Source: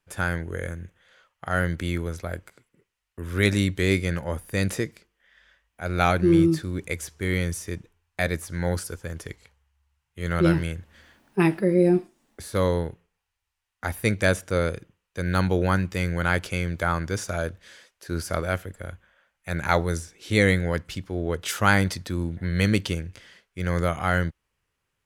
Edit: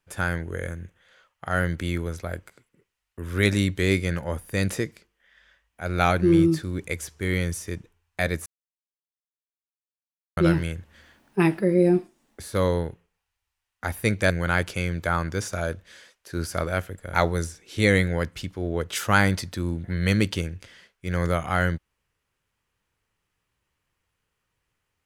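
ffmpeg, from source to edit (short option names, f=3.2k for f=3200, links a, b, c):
-filter_complex "[0:a]asplit=5[a][b][c][d][e];[a]atrim=end=8.46,asetpts=PTS-STARTPTS,afade=t=out:st=8.456:d=0.004:c=hsin[f];[b]atrim=start=8.46:end=10.37,asetpts=PTS-STARTPTS,volume=0[g];[c]atrim=start=10.37:end=14.302,asetpts=PTS-STARTPTS,afade=t=in:d=0.004:c=hsin[h];[d]atrim=start=16.058:end=18.902[i];[e]atrim=start=19.668[j];[f][g][h]concat=n=3:v=0:a=1[k];[k][i]acrossfade=d=0.004:c1=hsin:c2=hsin[l];[l][j]acrossfade=d=0.004:c1=hsin:c2=hsin"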